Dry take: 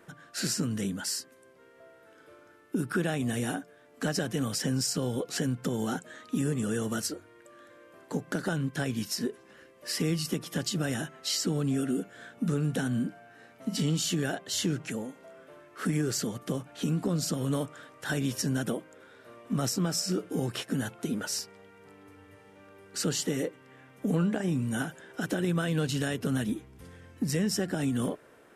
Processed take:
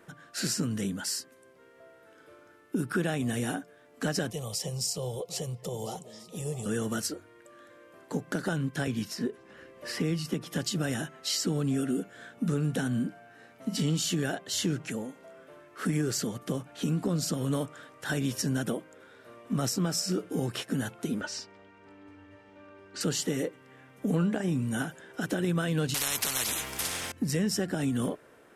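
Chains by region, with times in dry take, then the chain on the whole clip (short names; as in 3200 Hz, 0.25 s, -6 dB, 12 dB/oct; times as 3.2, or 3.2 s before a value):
4.3–6.66 fixed phaser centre 640 Hz, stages 4 + delay with a stepping band-pass 0.33 s, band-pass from 220 Hz, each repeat 1.4 oct, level -8.5 dB
8.87–10.53 high shelf 4400 Hz -9 dB + three-band squash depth 40%
21.21–23.01 air absorption 110 m + comb 3.3 ms, depth 58%
25.94–27.12 high shelf 3100 Hz +10.5 dB + spectral compressor 10:1
whole clip: dry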